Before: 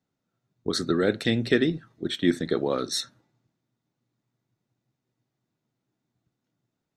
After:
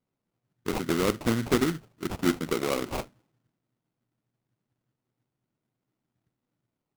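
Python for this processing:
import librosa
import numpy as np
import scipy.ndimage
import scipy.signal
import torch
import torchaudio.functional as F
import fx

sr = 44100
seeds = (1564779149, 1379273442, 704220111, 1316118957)

y = fx.sample_hold(x, sr, seeds[0], rate_hz=1700.0, jitter_pct=20)
y = F.gain(torch.from_numpy(y), -2.5).numpy()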